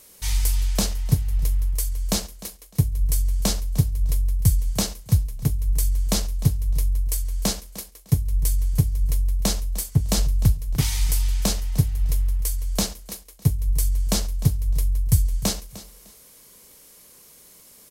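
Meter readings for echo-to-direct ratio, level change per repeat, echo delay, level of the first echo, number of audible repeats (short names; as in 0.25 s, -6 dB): -17.0 dB, -12.5 dB, 0.303 s, -17.0 dB, 2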